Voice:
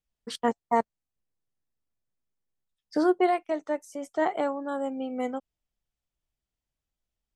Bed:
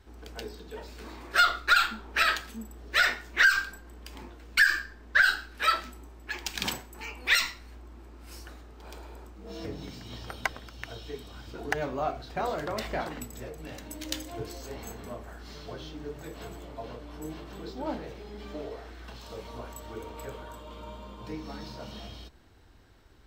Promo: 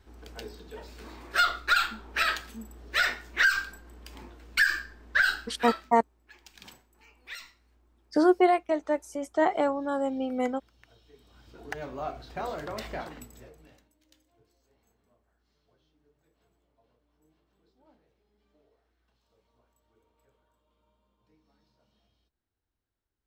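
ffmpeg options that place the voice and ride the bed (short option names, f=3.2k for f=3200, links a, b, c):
-filter_complex "[0:a]adelay=5200,volume=2dB[a];[1:a]volume=13dB,afade=t=out:st=5.36:d=0.59:silence=0.149624,afade=t=in:st=11.12:d=1.07:silence=0.177828,afade=t=out:st=12.88:d=1.03:silence=0.0473151[b];[a][b]amix=inputs=2:normalize=0"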